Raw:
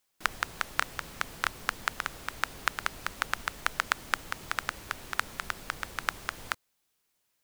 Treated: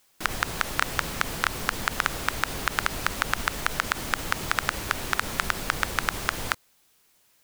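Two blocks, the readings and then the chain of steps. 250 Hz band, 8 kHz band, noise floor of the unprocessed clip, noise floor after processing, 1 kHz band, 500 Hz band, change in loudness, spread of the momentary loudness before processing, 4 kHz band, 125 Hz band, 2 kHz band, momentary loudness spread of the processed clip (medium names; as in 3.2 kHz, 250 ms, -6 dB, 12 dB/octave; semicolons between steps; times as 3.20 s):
+12.0 dB, +8.0 dB, -77 dBFS, -64 dBFS, +5.5 dB, +9.5 dB, +6.0 dB, 6 LU, +6.5 dB, +12.5 dB, +5.0 dB, 2 LU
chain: loudness maximiser +14 dB; trim -1 dB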